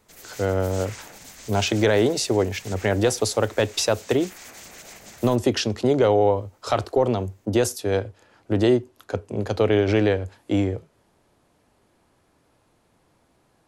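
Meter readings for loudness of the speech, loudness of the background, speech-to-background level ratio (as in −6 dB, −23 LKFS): −23.0 LKFS, −42.0 LKFS, 19.0 dB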